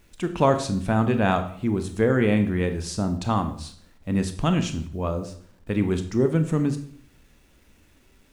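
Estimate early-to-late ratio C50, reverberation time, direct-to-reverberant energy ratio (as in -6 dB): 11.0 dB, 0.60 s, 7.5 dB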